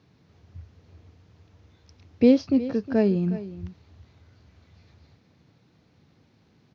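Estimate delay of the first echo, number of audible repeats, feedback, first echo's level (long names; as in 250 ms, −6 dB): 362 ms, 1, repeats not evenly spaced, −15.0 dB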